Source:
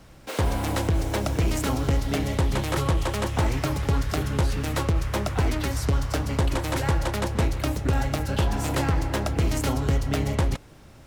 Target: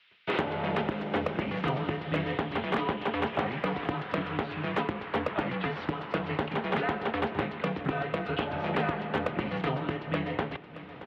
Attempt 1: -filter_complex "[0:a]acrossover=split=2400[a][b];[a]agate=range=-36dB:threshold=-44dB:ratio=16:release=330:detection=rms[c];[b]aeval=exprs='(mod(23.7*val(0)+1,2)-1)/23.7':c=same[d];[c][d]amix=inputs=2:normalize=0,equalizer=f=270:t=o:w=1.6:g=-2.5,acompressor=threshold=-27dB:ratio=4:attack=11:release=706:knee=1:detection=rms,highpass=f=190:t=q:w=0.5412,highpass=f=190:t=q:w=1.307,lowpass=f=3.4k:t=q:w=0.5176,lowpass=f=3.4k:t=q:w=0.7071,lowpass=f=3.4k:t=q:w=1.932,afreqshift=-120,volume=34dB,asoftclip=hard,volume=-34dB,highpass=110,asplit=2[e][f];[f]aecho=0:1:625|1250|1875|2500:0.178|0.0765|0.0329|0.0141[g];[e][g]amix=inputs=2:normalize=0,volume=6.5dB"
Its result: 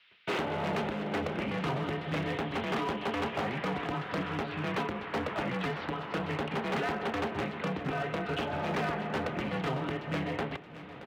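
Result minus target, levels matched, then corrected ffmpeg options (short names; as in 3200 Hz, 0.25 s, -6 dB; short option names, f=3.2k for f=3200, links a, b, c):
overloaded stage: distortion +14 dB
-filter_complex "[0:a]acrossover=split=2400[a][b];[a]agate=range=-36dB:threshold=-44dB:ratio=16:release=330:detection=rms[c];[b]aeval=exprs='(mod(23.7*val(0)+1,2)-1)/23.7':c=same[d];[c][d]amix=inputs=2:normalize=0,equalizer=f=270:t=o:w=1.6:g=-2.5,acompressor=threshold=-27dB:ratio=4:attack=11:release=706:knee=1:detection=rms,highpass=f=190:t=q:w=0.5412,highpass=f=190:t=q:w=1.307,lowpass=f=3.4k:t=q:w=0.5176,lowpass=f=3.4k:t=q:w=0.7071,lowpass=f=3.4k:t=q:w=1.932,afreqshift=-120,volume=24.5dB,asoftclip=hard,volume=-24.5dB,highpass=110,asplit=2[e][f];[f]aecho=0:1:625|1250|1875|2500:0.178|0.0765|0.0329|0.0141[g];[e][g]amix=inputs=2:normalize=0,volume=6.5dB"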